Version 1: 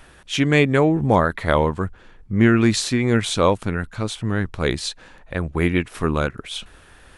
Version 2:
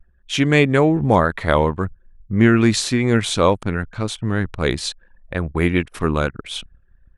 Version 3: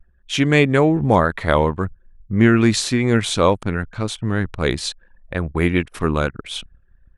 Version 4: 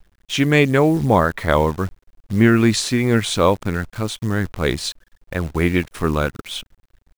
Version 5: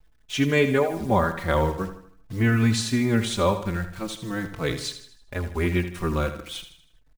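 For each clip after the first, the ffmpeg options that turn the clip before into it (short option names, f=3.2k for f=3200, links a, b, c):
-af "anlmdn=1,volume=1.5dB"
-af anull
-af "acrusher=bits=7:dc=4:mix=0:aa=0.000001"
-filter_complex "[0:a]asplit=2[a][b];[b]aecho=0:1:79|158|237|316|395:0.282|0.13|0.0596|0.0274|0.0126[c];[a][c]amix=inputs=2:normalize=0,asplit=2[d][e];[e]adelay=4.1,afreqshift=-0.43[f];[d][f]amix=inputs=2:normalize=1,volume=-3.5dB"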